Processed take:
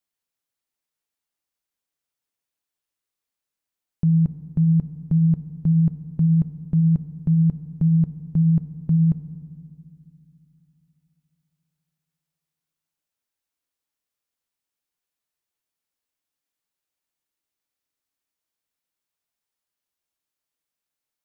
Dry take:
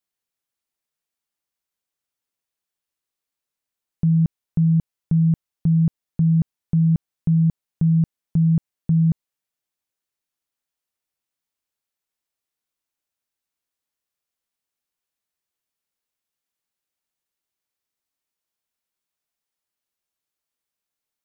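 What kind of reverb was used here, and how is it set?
FDN reverb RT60 2.3 s, low-frequency decay 1.45×, high-frequency decay 0.55×, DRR 13 dB; trim -1 dB

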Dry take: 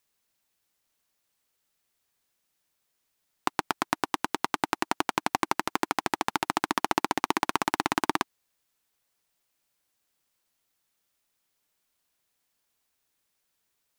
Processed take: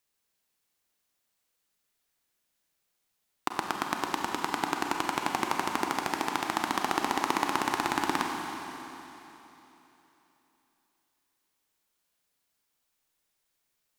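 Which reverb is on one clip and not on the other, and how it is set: Schroeder reverb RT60 3.4 s, combs from 31 ms, DRR 1.5 dB; trim -3.5 dB

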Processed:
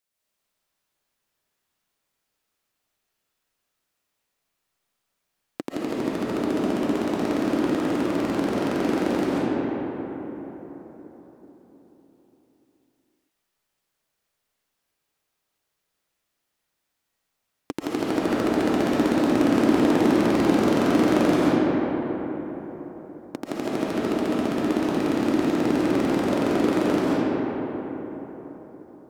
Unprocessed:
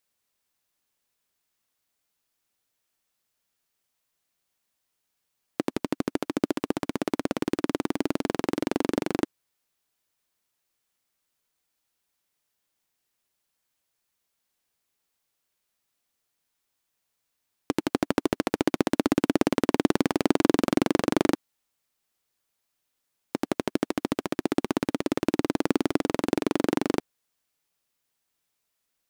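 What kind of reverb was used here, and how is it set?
algorithmic reverb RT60 4.5 s, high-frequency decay 0.4×, pre-delay 100 ms, DRR -8.5 dB; trim -5 dB

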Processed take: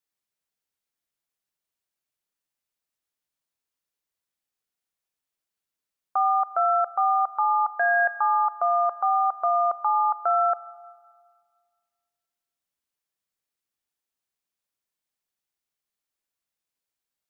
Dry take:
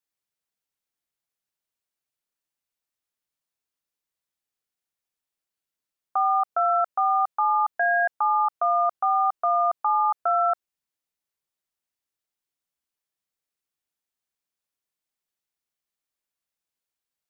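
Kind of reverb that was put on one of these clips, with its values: Schroeder reverb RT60 1.8 s, combs from 30 ms, DRR 17.5 dB

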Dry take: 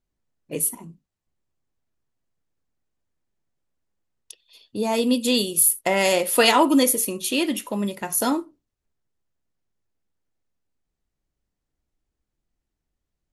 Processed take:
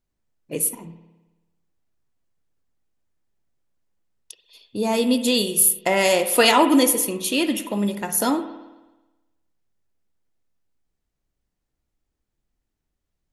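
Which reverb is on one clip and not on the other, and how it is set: spring tank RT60 1.1 s, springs 54 ms, chirp 80 ms, DRR 10 dB; trim +1 dB

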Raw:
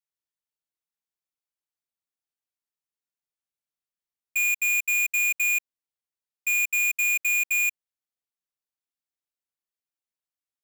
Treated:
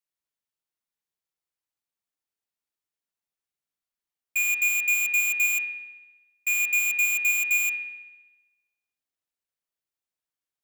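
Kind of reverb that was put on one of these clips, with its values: spring tank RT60 1.1 s, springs 57 ms, chirp 25 ms, DRR 4.5 dB

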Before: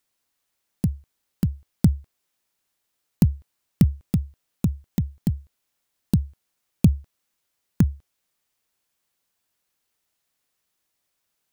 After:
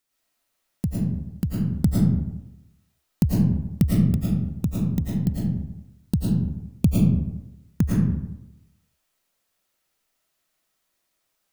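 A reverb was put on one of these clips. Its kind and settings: algorithmic reverb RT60 0.91 s, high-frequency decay 0.5×, pre-delay 70 ms, DRR -6 dB; trim -3 dB

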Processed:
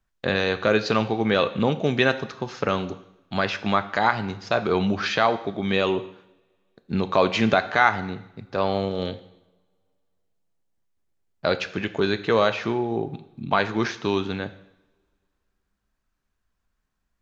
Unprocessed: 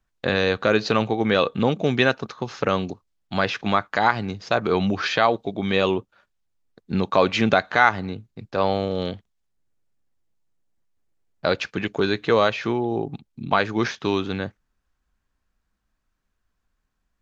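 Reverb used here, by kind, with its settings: two-slope reverb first 0.78 s, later 2.6 s, from -28 dB, DRR 10.5 dB; trim -1.5 dB

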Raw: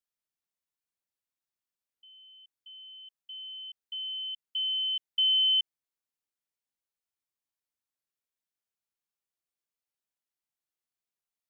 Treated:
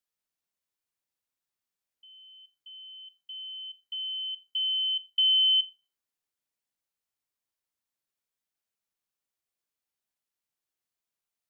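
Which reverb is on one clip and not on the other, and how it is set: Schroeder reverb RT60 0.32 s, combs from 26 ms, DRR 16.5 dB; trim +2 dB

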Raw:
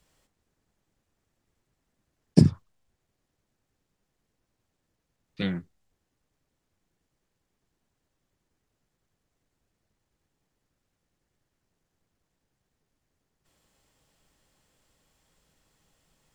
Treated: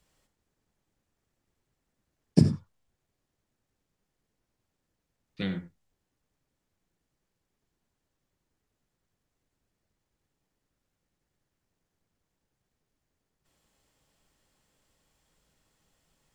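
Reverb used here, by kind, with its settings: gated-style reverb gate 110 ms rising, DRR 11.5 dB; trim -3 dB

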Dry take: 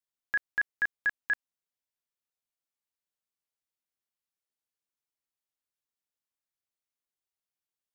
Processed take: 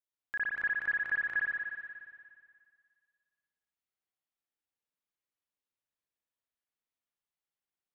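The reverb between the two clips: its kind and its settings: spring tank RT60 2 s, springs 56 ms, chirp 45 ms, DRR -6.5 dB; trim -8 dB

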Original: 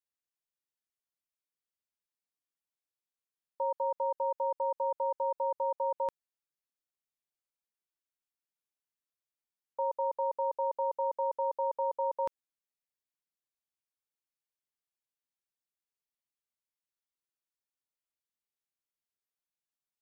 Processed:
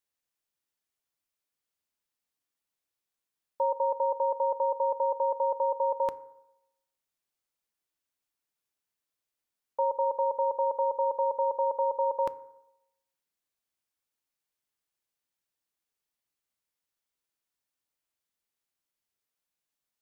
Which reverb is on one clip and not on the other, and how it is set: FDN reverb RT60 0.89 s, low-frequency decay 0.8×, high-frequency decay 0.35×, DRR 15 dB; trim +5.5 dB

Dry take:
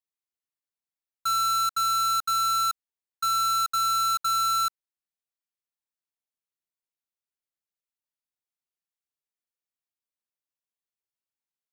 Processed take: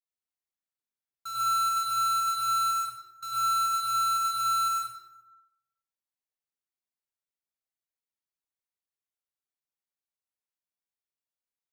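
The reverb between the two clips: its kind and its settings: plate-style reverb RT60 1 s, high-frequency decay 0.65×, pre-delay 85 ms, DRR -7.5 dB; trim -12 dB

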